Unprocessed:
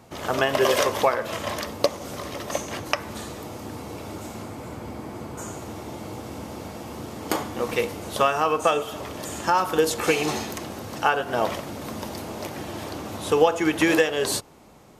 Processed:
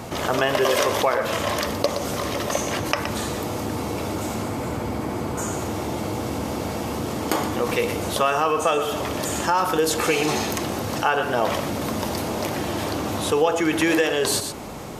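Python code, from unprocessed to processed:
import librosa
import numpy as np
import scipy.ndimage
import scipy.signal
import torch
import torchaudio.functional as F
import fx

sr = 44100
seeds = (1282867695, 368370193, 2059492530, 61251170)

p1 = x + fx.echo_single(x, sr, ms=120, db=-14.5, dry=0)
p2 = fx.env_flatten(p1, sr, amount_pct=50)
y = p2 * 10.0 ** (-3.0 / 20.0)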